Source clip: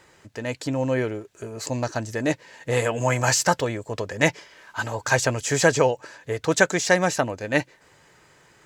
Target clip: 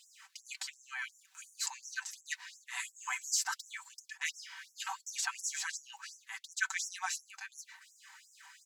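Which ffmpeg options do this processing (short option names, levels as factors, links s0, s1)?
-af "areverse,acompressor=threshold=0.0398:ratio=20,areverse,aecho=1:1:5.2:0.78,afftfilt=real='re*gte(b*sr/1024,730*pow(5500/730,0.5+0.5*sin(2*PI*2.8*pts/sr)))':imag='im*gte(b*sr/1024,730*pow(5500/730,0.5+0.5*sin(2*PI*2.8*pts/sr)))':win_size=1024:overlap=0.75"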